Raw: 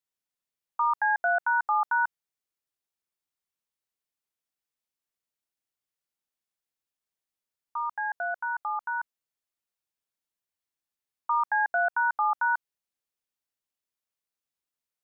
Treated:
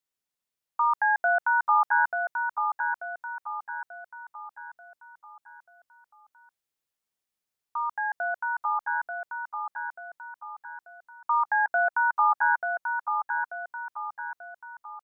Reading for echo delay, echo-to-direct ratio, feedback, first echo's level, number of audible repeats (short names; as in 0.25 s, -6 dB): 0.887 s, -4.5 dB, 44%, -5.5 dB, 5